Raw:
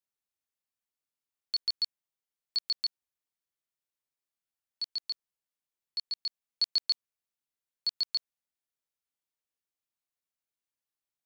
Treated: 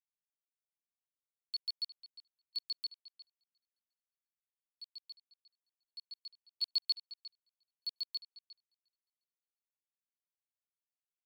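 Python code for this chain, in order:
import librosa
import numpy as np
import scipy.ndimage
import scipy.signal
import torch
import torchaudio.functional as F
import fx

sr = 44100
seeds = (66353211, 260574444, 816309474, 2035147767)

y = F.preemphasis(torch.from_numpy(x), 0.8).numpy()
y = fx.fixed_phaser(y, sr, hz=1700.0, stages=6)
y = fx.echo_filtered(y, sr, ms=355, feedback_pct=32, hz=4700.0, wet_db=-4)
y = fx.upward_expand(y, sr, threshold_db=-54.0, expansion=2.5)
y = y * librosa.db_to_amplitude(6.5)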